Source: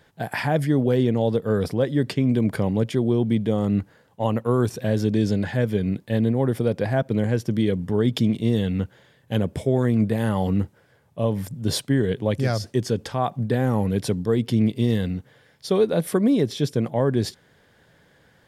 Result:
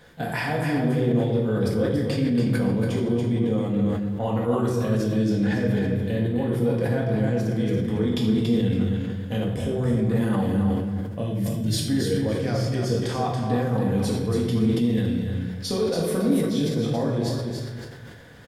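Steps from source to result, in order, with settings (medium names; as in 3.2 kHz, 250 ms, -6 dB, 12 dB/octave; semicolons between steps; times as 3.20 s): 11.22–11.81 s: high-order bell 780 Hz -14 dB; compression 3:1, threshold -34 dBFS, peak gain reduction 14.5 dB; feedback delay 281 ms, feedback 22%, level -5.5 dB; reverberation RT60 1.0 s, pre-delay 4 ms, DRR -3 dB; decay stretcher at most 44 dB/s; trim +3 dB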